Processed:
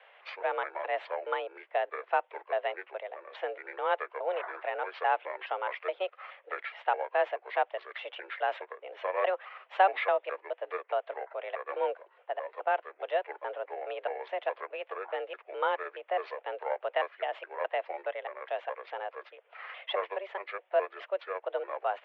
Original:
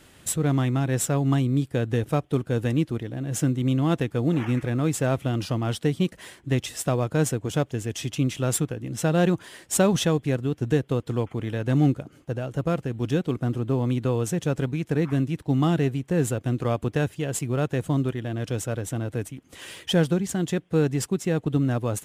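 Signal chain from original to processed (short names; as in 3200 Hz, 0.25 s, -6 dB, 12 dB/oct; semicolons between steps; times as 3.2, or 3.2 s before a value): trilling pitch shifter -9.5 st, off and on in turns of 0.21 s; mistuned SSB +190 Hz 380–2700 Hz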